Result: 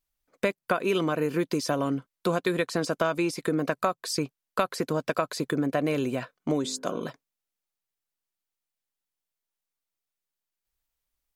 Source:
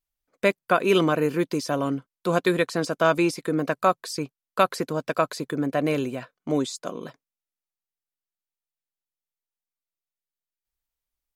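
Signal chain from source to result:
0:06.61–0:07.04: hum removal 51.81 Hz, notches 32
downward compressor, threshold −26 dBFS, peak gain reduction 12 dB
level +3.5 dB

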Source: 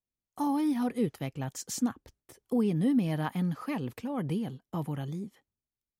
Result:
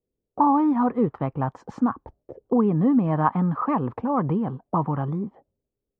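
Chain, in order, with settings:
in parallel at +2 dB: downward compressor, threshold −38 dBFS, peak gain reduction 15.5 dB
on the sum: envelope-controlled low-pass 450–1,100 Hz up, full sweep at −28.5 dBFS
level +4 dB

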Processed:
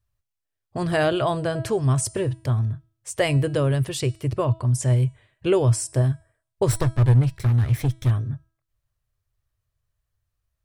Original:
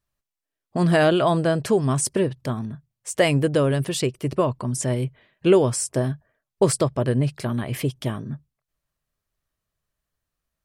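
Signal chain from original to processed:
0:06.68–0:08.11: lower of the sound and its delayed copy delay 0.52 ms
low shelf with overshoot 140 Hz +8.5 dB, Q 3
hum removal 325 Hz, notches 30
level −2.5 dB

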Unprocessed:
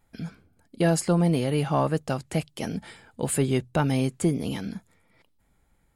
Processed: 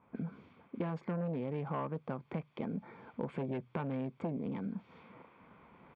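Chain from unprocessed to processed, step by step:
adaptive Wiener filter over 15 samples
in parallel at −11.5 dB: bit-depth reduction 8 bits, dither triangular
on the sum: comb filter 0.9 ms, depth 55%
sine wavefolder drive 4 dB, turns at −10.5 dBFS
reversed playback
upward compression, threshold −34 dBFS
reversed playback
low-pass that shuts in the quiet parts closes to 1,000 Hz, open at −24.5 dBFS
loudspeaker in its box 230–2,400 Hz, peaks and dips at 310 Hz −5 dB, 520 Hz +5 dB, 800 Hz −5 dB, 1,300 Hz −7 dB, 2,000 Hz −7 dB
downward compressor 3 to 1, threshold −37 dBFS, peak gain reduction 16 dB
level −2 dB

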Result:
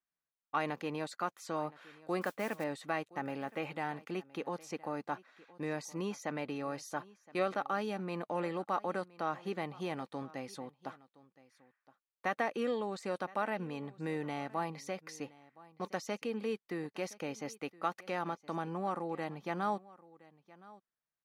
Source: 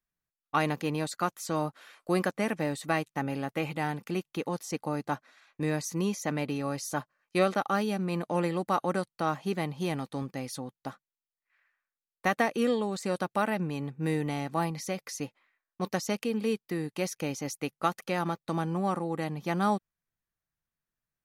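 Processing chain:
low-pass filter 2,100 Hz 6 dB per octave
low-shelf EQ 100 Hz −11.5 dB
in parallel at −1 dB: brickwall limiter −24.5 dBFS, peak gain reduction 11 dB
0:02.21–0:02.64: on the sum: noise that follows the level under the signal 22 dB
low-shelf EQ 320 Hz −8 dB
on a send: single-tap delay 1,018 ms −21 dB
on the sum: level −6.5 dB

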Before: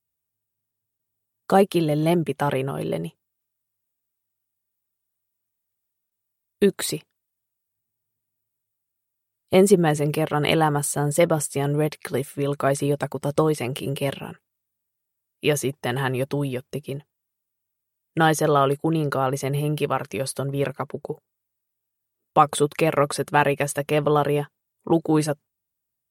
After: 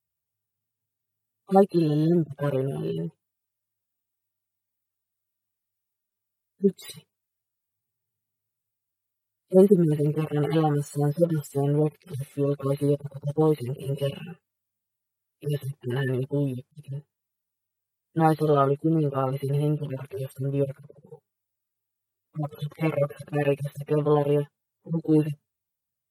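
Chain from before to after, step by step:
harmonic-percussive split with one part muted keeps harmonic

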